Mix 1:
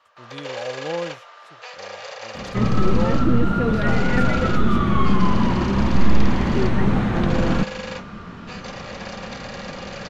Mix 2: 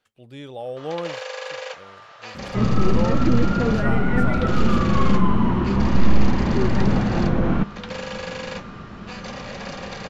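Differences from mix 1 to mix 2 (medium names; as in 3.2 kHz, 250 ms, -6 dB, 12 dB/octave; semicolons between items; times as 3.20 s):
first sound: entry +0.60 s; second sound: add low-pass 1.8 kHz 6 dB/octave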